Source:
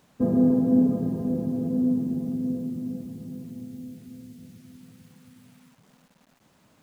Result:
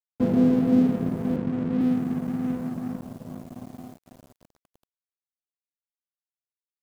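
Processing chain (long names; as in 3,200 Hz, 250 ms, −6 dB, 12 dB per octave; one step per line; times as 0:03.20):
0:01.36–0:01.81: Butterworth low-pass 580 Hz
in parallel at −3 dB: downward compressor, threshold −31 dBFS, peak gain reduction 15 dB
on the sum: dead-zone distortion −36 dBFS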